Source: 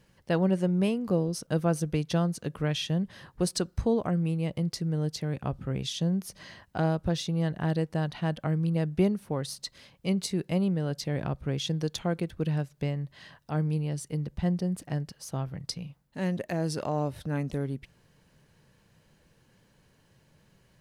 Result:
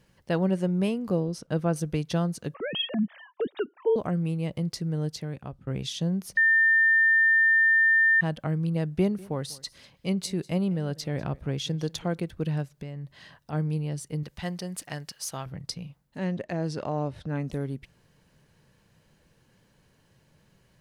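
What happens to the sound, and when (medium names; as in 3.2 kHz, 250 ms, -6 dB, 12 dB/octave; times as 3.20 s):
1.20–1.76 s: treble shelf 7.2 kHz -12 dB
2.54–3.96 s: formants replaced by sine waves
5.05–5.67 s: fade out, to -14 dB
6.37–8.21 s: bleep 1.8 kHz -17 dBFS
8.85–12.15 s: delay 196 ms -22 dB
12.78–13.53 s: compression, threshold -33 dBFS
14.23–15.46 s: tilt shelf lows -8.5 dB, about 670 Hz
16.18–17.43 s: distance through air 80 m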